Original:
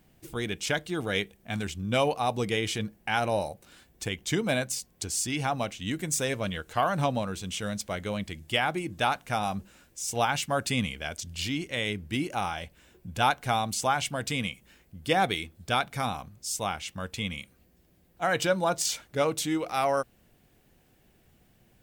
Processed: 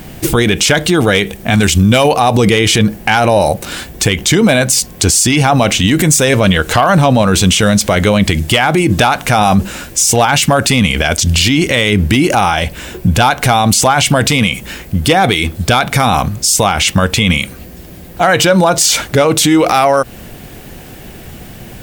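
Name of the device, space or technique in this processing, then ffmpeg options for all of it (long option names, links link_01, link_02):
loud club master: -filter_complex "[0:a]asettb=1/sr,asplit=3[link_01][link_02][link_03];[link_01]atrim=end=1.634[link_04];[link_02]atrim=start=1.63:end=2.11,asetpts=PTS-STARTPTS,afade=type=in:duration=0.004:curve=qsin,afade=type=out:start_time=0.476:duration=0.004:curve=qsin,highshelf=frequency=3800:gain=7[link_05];[link_03]atrim=start=2.106[link_06];[link_04][link_05]acrossfade=duration=0.004:curve1=hsin:curve2=qsin[link_07];[link_07][link_06]acrossfade=duration=0.004:curve1=qsin:curve2=hsin,acompressor=threshold=-28dB:ratio=3,asoftclip=type=hard:threshold=-22dB,alimiter=level_in=32dB:limit=-1dB:release=50:level=0:latency=1,volume=-1dB"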